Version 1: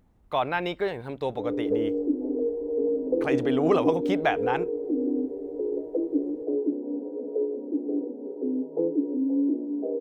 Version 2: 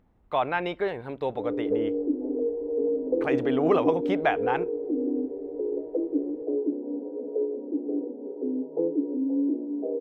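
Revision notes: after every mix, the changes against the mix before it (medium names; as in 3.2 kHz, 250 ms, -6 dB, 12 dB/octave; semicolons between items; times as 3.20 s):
speech: send on; master: add tone controls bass -3 dB, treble -11 dB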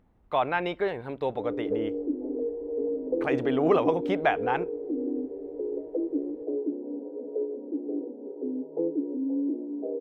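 background: send -11.0 dB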